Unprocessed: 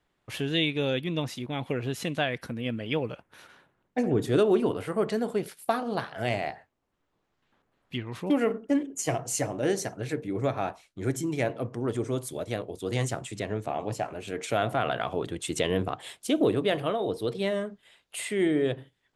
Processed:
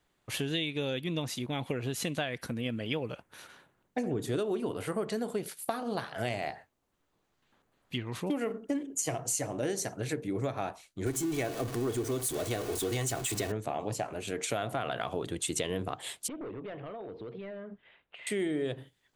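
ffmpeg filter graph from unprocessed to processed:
-filter_complex "[0:a]asettb=1/sr,asplit=3[a][b][c];[a]atrim=end=11.064[d];[b]atrim=start=11.06:end=13.52,asetpts=PTS-STARTPTS,afade=t=in:d=0.004:c=qsin,afade=t=out:st=2.456:d=0.004:c=qsin,aeval=exprs='val(0)+0.5*0.02*sgn(val(0))':c=same,aecho=1:1:2.7:0.38,atrim=end_sample=108486[e];[c]atrim=start=13.516[f];[d][e]acrossfade=d=0.004:c1=hsin:c2=qsin[g];[g][f]acrossfade=d=0.004:c1=qsin:c2=hsin,asettb=1/sr,asplit=3[h][i][j];[h]atrim=end=16.284[k];[i]atrim=start=16.28:end=18.27,asetpts=PTS-STARTPTS,afade=t=in:d=0.004:c=qsin,afade=t=out:st=1.986:d=0.004:c=qsin,asoftclip=type=hard:threshold=-23dB,acompressor=threshold=-38dB:ratio=16:attack=3.2:release=140:knee=1:detection=peak,lowpass=f=2.6k:w=0.5412,lowpass=f=2.6k:w=1.3066[l];[j]atrim=start=18.266[m];[k][l]acrossfade=d=0.004:c1=hsin:c2=qsin[n];[n][m]acrossfade=d=0.004:c1=qsin:c2=hsin,bass=f=250:g=0,treble=f=4k:g=6,bandreject=f=5.3k:w=20,acompressor=threshold=-29dB:ratio=5"

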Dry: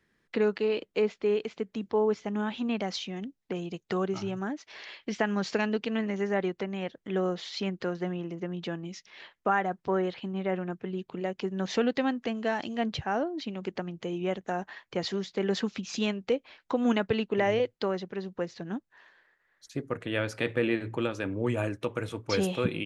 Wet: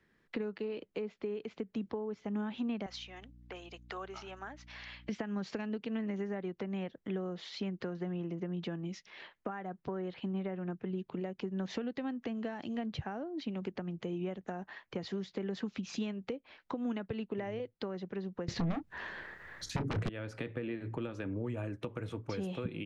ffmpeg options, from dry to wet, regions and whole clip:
-filter_complex "[0:a]asettb=1/sr,asplit=3[a][b][c];[a]atrim=end=2.864[d];[b]atrim=start=2.86:end=5.09,asetpts=PTS-STARTPTS,afade=t=in:d=0.004:c=qsin,afade=t=out:st=2.226:d=0.004:c=qsin,highpass=800,aeval=exprs='val(0)+0.00158*(sin(2*PI*60*n/s)+sin(2*PI*2*60*n/s)/2+sin(2*PI*3*60*n/s)/3+sin(2*PI*4*60*n/s)/4+sin(2*PI*5*60*n/s)/5)':c=same[e];[c]atrim=start=5.086[f];[d][e]acrossfade=d=0.004:c1=hsin:c2=qsin[g];[g][f]acrossfade=d=0.004:c1=qsin:c2=hsin,asettb=1/sr,asplit=3[h][i][j];[h]atrim=end=18.484[k];[i]atrim=start=18.48:end=20.09,asetpts=PTS-STARTPTS,afade=t=in:d=0.004:c=qsin,afade=t=out:st=1.606:d=0.004:c=qsin,equalizer=f=82:w=0.56:g=10.5,aeval=exprs='0.188*sin(PI/2*7.94*val(0)/0.188)':c=same,asplit=2[l][m];[m]adelay=29,volume=-11dB[n];[l][n]amix=inputs=2:normalize=0,atrim=end_sample=71001[o];[j]atrim=start=20.086[p];[k][o]acrossfade=d=0.004:c1=hsin:c2=qsin[q];[q][p]acrossfade=d=0.004:c1=qsin:c2=hsin,acompressor=threshold=-32dB:ratio=6,highshelf=f=5.1k:g=-10,acrossover=split=300[r][s];[s]acompressor=threshold=-51dB:ratio=1.5[t];[r][t]amix=inputs=2:normalize=0,volume=1dB"

